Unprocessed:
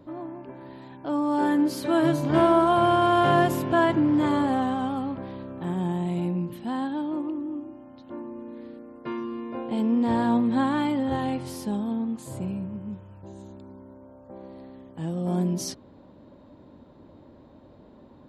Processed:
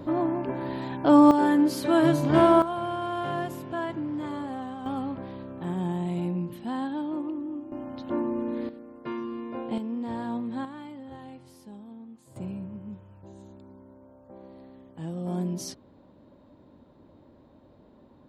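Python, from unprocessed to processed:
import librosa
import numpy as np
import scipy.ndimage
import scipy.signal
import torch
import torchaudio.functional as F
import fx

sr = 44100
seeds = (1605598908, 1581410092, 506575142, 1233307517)

y = fx.gain(x, sr, db=fx.steps((0.0, 10.5), (1.31, 1.0), (2.62, -10.5), (4.86, -2.0), (7.72, 9.0), (8.69, -1.5), (9.78, -9.5), (10.65, -16.5), (12.36, -4.5)))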